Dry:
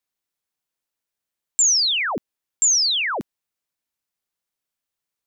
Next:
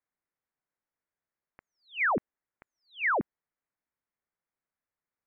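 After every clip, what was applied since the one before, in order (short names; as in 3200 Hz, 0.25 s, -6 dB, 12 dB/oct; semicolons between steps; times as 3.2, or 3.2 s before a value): steep low-pass 2200 Hz 48 dB/oct; gain -1.5 dB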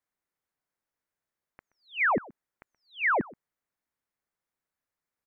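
echo 0.126 s -22.5 dB; gain +2 dB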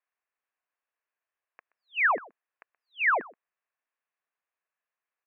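speaker cabinet 450–3100 Hz, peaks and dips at 460 Hz +3 dB, 680 Hz +5 dB, 1100 Hz +7 dB, 1700 Hz +7 dB, 2600 Hz +10 dB; gain -4.5 dB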